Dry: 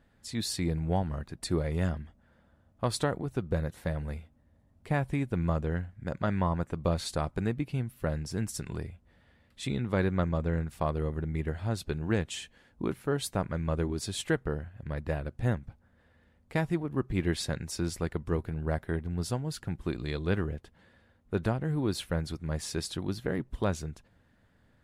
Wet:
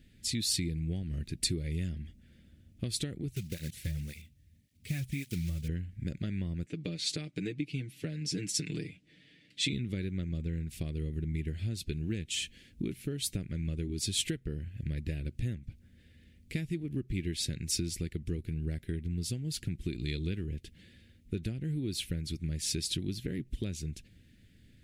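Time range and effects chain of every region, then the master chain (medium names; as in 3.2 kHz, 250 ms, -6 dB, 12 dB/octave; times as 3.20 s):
3.31–5.69 s: block-companded coder 5-bit + peaking EQ 360 Hz -8 dB 1.8 oct + cancelling through-zero flanger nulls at 1.8 Hz, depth 5.1 ms
6.66–9.73 s: band-pass 210–6700 Hz + comb 6.6 ms, depth 80%
whole clip: bass shelf 360 Hz +5 dB; compression 6:1, threshold -33 dBFS; FFT filter 350 Hz 0 dB, 1 kHz -26 dB, 2.3 kHz +7 dB; trim +2 dB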